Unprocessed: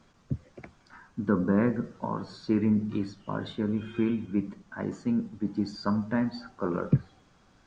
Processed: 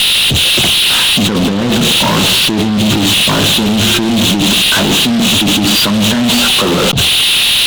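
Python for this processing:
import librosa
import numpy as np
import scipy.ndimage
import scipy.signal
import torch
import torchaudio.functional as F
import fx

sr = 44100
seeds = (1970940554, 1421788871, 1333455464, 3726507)

y = fx.dmg_noise_band(x, sr, seeds[0], low_hz=2600.0, high_hz=4000.0, level_db=-41.0)
y = fx.over_compress(y, sr, threshold_db=-37.0, ratio=-1.0)
y = fx.fuzz(y, sr, gain_db=49.0, gate_db=-54.0)
y = F.gain(torch.from_numpy(y), 4.0).numpy()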